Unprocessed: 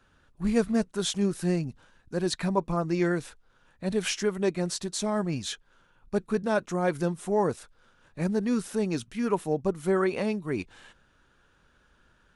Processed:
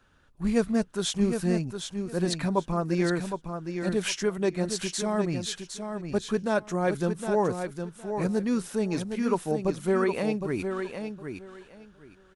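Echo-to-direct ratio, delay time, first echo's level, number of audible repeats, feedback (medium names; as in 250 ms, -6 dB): -7.0 dB, 762 ms, -7.0 dB, 2, 19%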